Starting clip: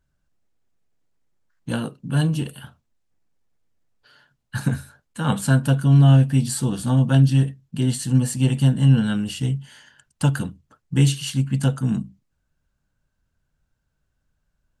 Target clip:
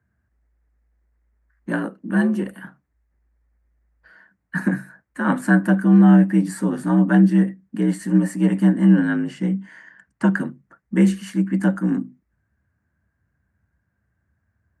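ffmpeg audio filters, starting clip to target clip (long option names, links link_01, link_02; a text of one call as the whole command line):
ffmpeg -i in.wav -filter_complex "[0:a]asettb=1/sr,asplit=3[link_01][link_02][link_03];[link_01]atrim=end=9.074[link_04];[link_02]atrim=start=9.07:end=10.4,asetpts=PTS-STARTPTS,afade=type=in:duration=0.004:curve=qsin,afade=type=out:start_time=1.326:duration=0.004:curve=qsin,lowpass=7300[link_05];[link_03]atrim=start=10.396[link_06];[link_04][link_05]acrossfade=duration=0.004:curve1=hsin:curve2=qsin[link_07];[link_07][link_06]acrossfade=duration=0.004:curve1=qsin:curve2=hsin,afreqshift=56,highshelf=frequency=2500:width_type=q:width=3:gain=-9.5,volume=1dB" out.wav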